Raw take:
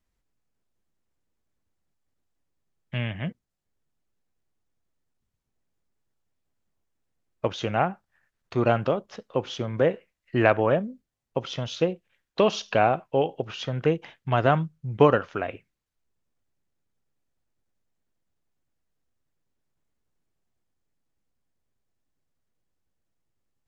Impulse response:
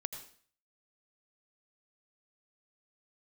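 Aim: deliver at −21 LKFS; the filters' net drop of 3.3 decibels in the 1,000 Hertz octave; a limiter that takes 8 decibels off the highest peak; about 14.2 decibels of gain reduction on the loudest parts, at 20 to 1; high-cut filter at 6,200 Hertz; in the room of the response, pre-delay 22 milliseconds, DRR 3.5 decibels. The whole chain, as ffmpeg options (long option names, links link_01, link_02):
-filter_complex "[0:a]lowpass=6200,equalizer=frequency=1000:width_type=o:gain=-5,acompressor=threshold=-26dB:ratio=20,alimiter=limit=-21dB:level=0:latency=1,asplit=2[link_01][link_02];[1:a]atrim=start_sample=2205,adelay=22[link_03];[link_02][link_03]afir=irnorm=-1:irlink=0,volume=-3dB[link_04];[link_01][link_04]amix=inputs=2:normalize=0,volume=13.5dB"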